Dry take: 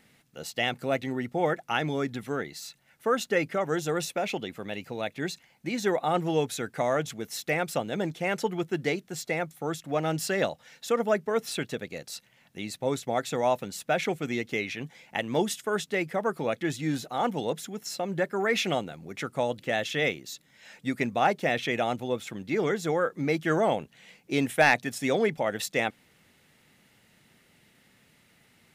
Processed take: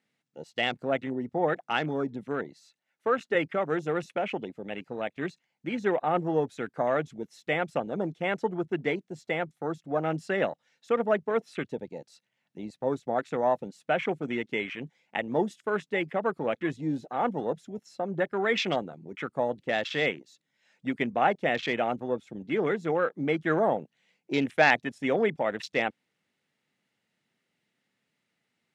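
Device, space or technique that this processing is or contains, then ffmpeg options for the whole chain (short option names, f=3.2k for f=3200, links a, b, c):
over-cleaned archive recording: -filter_complex "[0:a]asettb=1/sr,asplit=3[a][b][c];[a]atrim=end=2.664[d];[b]atrim=start=2.66:end=3.35,asetpts=PTS-STARTPTS,afade=t=in:d=0.004:c=qsin,afade=t=out:st=0.686:d=0.004:c=qsin,highpass=240[e];[c]atrim=start=3.346[f];[d][e]acrossfade=d=0.004:c1=hsin:c2=qsin[g];[g][f]acrossfade=d=0.004:c1=qsin:c2=hsin,highpass=150,lowpass=7.8k,afwtdn=0.0141"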